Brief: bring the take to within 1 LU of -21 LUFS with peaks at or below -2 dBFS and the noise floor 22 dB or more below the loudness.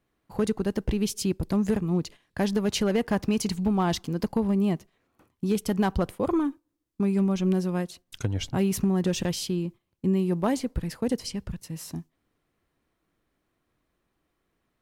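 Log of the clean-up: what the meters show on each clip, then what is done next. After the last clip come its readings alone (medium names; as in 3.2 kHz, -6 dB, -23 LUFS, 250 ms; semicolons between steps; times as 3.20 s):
clipped samples 0.3%; clipping level -16.0 dBFS; loudness -27.5 LUFS; peak level -16.0 dBFS; loudness target -21.0 LUFS
-> clip repair -16 dBFS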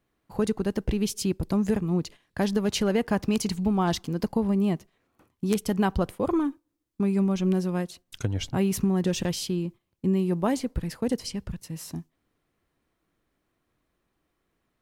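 clipped samples 0.0%; loudness -27.5 LUFS; peak level -7.0 dBFS; loudness target -21.0 LUFS
-> trim +6.5 dB; peak limiter -2 dBFS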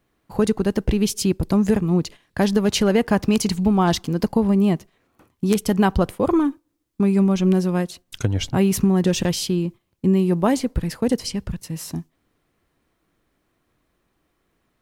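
loudness -21.0 LUFS; peak level -2.0 dBFS; noise floor -71 dBFS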